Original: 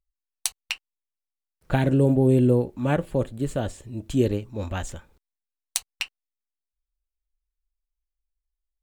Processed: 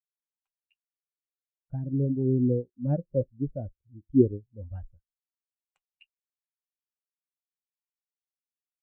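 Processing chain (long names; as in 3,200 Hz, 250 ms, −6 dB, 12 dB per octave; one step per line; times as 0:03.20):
running median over 9 samples
speech leveller within 3 dB 0.5 s
every bin expanded away from the loudest bin 2.5 to 1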